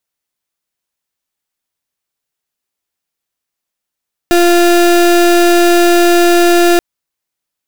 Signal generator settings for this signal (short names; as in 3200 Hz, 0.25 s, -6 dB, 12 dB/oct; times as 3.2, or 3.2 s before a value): pulse 347 Hz, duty 32% -8 dBFS 2.48 s